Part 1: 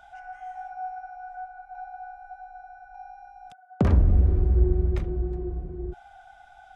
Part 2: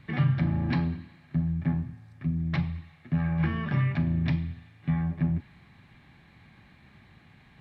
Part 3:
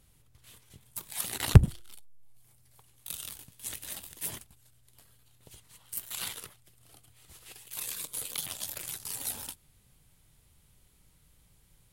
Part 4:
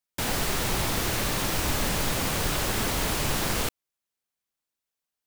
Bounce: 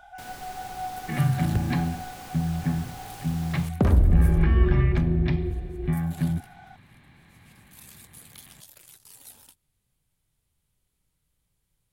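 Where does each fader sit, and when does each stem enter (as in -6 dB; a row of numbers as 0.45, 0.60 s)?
+0.5, +1.0, -12.0, -16.5 dB; 0.00, 1.00, 0.00, 0.00 s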